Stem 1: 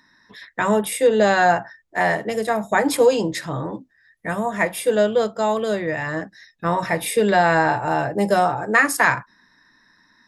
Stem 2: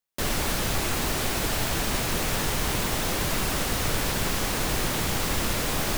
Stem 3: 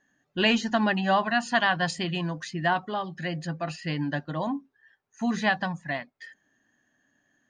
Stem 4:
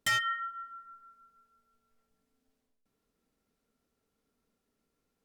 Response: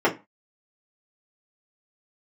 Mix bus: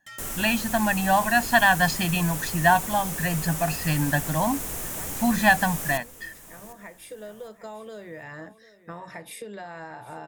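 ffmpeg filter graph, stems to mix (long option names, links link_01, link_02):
-filter_complex "[0:a]acompressor=threshold=-25dB:ratio=8,adelay=2250,volume=-11dB,asplit=2[link_01][link_02];[link_02]volume=-16.5dB[link_03];[1:a]aemphasis=mode=reproduction:type=cd,aexciter=amount=8.1:drive=3.9:freq=6300,volume=-10.5dB,asplit=2[link_04][link_05];[link_05]volume=-15dB[link_06];[2:a]aecho=1:1:1.2:0.91,dynaudnorm=framelen=520:gausssize=5:maxgain=11.5dB,volume=-4dB,asplit=2[link_07][link_08];[3:a]volume=-15.5dB[link_09];[link_08]apad=whole_len=552284[link_10];[link_01][link_10]sidechaincompress=threshold=-30dB:ratio=8:attack=31:release=1460[link_11];[link_03][link_06]amix=inputs=2:normalize=0,aecho=0:1:752|1504|2256|3008:1|0.3|0.09|0.027[link_12];[link_11][link_04][link_07][link_09][link_12]amix=inputs=5:normalize=0"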